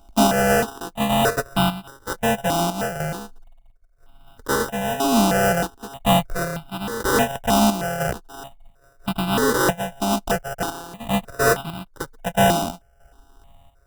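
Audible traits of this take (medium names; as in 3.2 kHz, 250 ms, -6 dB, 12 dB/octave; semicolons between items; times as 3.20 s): a buzz of ramps at a fixed pitch in blocks of 64 samples; chopped level 1 Hz, depth 60%, duty 70%; aliases and images of a low sample rate 2.2 kHz, jitter 0%; notches that jump at a steady rate 3.2 Hz 480–1800 Hz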